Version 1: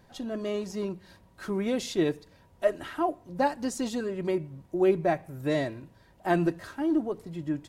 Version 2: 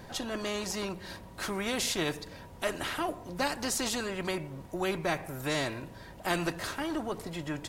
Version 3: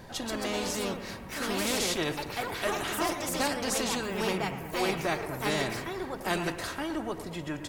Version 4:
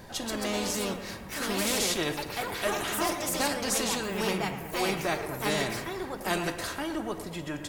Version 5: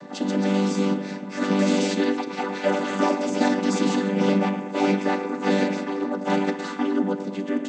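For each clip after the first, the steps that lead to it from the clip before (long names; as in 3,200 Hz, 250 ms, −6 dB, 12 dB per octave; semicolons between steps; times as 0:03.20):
every bin compressed towards the loudest bin 2 to 1; level −4 dB
delay with pitch and tempo change per echo 157 ms, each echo +3 semitones, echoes 2; bucket-brigade delay 111 ms, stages 2,048, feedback 63%, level −12 dB
high-shelf EQ 6,100 Hz +4.5 dB; on a send at −12.5 dB: convolution reverb RT60 0.65 s, pre-delay 5 ms
channel vocoder with a chord as carrier major triad, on G3; level +9 dB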